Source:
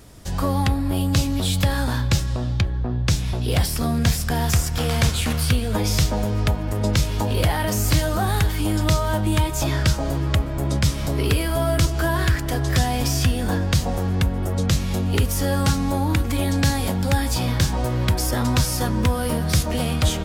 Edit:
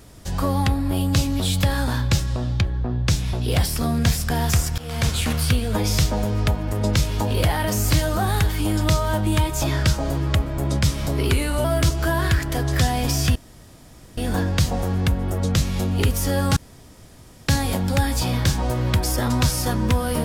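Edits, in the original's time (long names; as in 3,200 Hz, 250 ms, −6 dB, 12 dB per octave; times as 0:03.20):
0:04.78–0:05.15: fade in, from −19 dB
0:11.30–0:11.61: play speed 90%
0:13.32: splice in room tone 0.82 s
0:15.71–0:16.63: fill with room tone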